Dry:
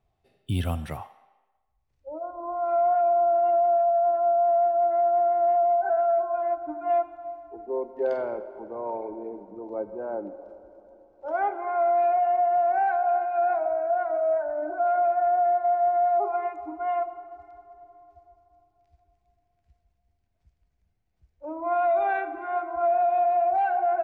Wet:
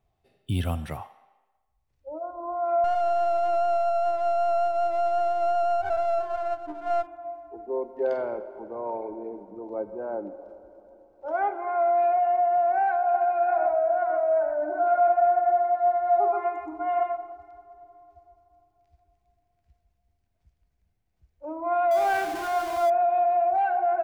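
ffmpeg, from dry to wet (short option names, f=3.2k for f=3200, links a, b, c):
-filter_complex "[0:a]asettb=1/sr,asplit=3[a][b][c];[a]atrim=end=2.844[d];[b]atrim=start=2.84:end=7.07,asetpts=PTS-STARTPTS,afade=t=in:d=0.004:c=qsin,afade=t=out:st=4.226:d=0.004:c=qsin,aeval=exprs='if(lt(val(0),0),0.447*val(0),val(0))':c=same[e];[c]atrim=start=7.066[f];[d][e]acrossfade=d=0.004:c1=hsin:c2=qsin[g];[g][f]acrossfade=d=0.004:c1=qsin:c2=hsin,asettb=1/sr,asplit=3[h][i][j];[h]atrim=end=13.024[k];[i]atrim=start=13.02:end=17.32,asetpts=PTS-STARTPTS,afade=t=in:d=0.004:c=qsin,afade=t=out:st=4.296:d=0.004:c=qsin,aecho=1:1:123:0.668,atrim=end_sample=189630[l];[j]atrim=start=17.316[m];[k][l]acrossfade=d=0.004:c1=hsin:c2=qsin[n];[n][m]acrossfade=d=0.004:c1=qsin:c2=hsin,asettb=1/sr,asplit=3[o][p][q];[o]atrim=end=21.914[r];[p]atrim=start=21.91:end=22.9,asetpts=PTS-STARTPTS,afade=t=in:d=0.004:c=qsin,afade=t=out:st=0.986:d=0.004:c=qsin,aeval=exprs='val(0)+0.5*0.0266*sgn(val(0))':c=same[s];[q]atrim=start=22.896[t];[r][s]acrossfade=d=0.004:c1=hsin:c2=qsin[u];[u][t]acrossfade=d=0.004:c1=qsin:c2=hsin"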